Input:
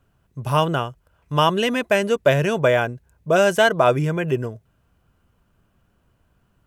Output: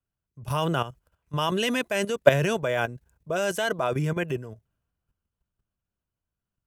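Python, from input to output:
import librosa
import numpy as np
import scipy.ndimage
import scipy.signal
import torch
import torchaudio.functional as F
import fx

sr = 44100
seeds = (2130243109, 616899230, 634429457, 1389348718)

y = fx.high_shelf(x, sr, hz=3300.0, db=6.5)
y = fx.level_steps(y, sr, step_db=12)
y = fx.band_widen(y, sr, depth_pct=40)
y = y * librosa.db_to_amplitude(-1.0)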